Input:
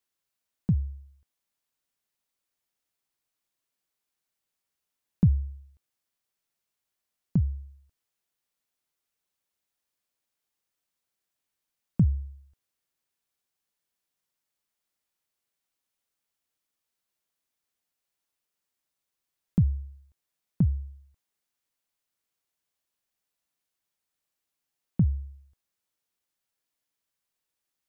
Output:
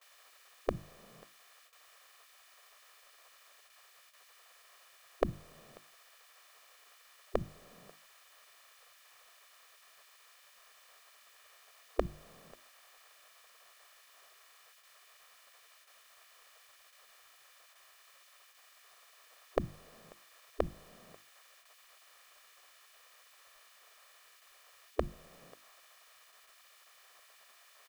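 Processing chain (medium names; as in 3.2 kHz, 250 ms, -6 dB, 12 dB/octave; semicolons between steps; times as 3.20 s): spectral levelling over time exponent 0.6; gate with hold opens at -59 dBFS; spectral gate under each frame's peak -20 dB weak; bass shelf 300 Hz -5 dB; hum notches 50/100/150/200/250/300/350 Hz; comb 1.7 ms, depth 54%; trim +15.5 dB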